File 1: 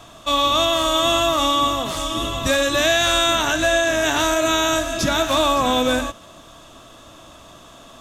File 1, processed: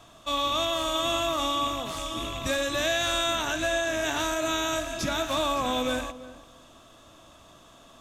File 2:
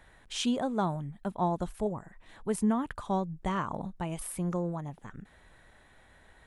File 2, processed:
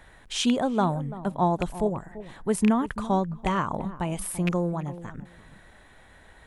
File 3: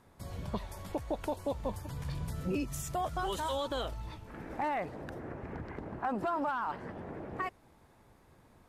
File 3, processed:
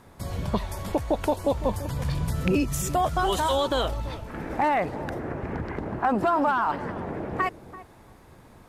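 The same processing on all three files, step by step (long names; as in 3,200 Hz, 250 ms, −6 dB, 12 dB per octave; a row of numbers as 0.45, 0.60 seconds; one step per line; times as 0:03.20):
loose part that buzzes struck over −29 dBFS, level −22 dBFS
feedback echo with a low-pass in the loop 338 ms, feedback 17%, low-pass 920 Hz, level −14 dB
loudness normalisation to −27 LKFS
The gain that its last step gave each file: −9.0, +5.5, +10.0 decibels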